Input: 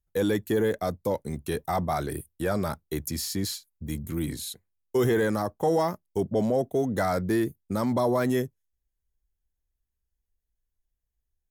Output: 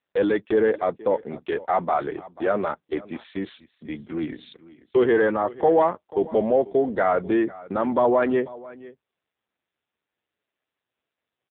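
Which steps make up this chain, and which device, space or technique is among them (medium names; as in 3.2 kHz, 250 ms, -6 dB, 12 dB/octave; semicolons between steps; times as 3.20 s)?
3.00–3.96 s: gate with hold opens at -56 dBFS; satellite phone (band-pass 330–3400 Hz; delay 490 ms -19.5 dB; trim +7.5 dB; AMR-NB 5.9 kbps 8 kHz)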